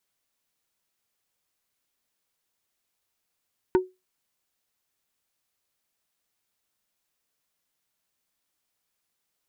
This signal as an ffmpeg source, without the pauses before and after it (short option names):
-f lavfi -i "aevalsrc='0.224*pow(10,-3*t/0.22)*sin(2*PI*370*t)+0.1*pow(10,-3*t/0.073)*sin(2*PI*925*t)+0.0447*pow(10,-3*t/0.042)*sin(2*PI*1480*t)+0.02*pow(10,-3*t/0.032)*sin(2*PI*1850*t)+0.00891*pow(10,-3*t/0.023)*sin(2*PI*2405*t)':d=0.45:s=44100"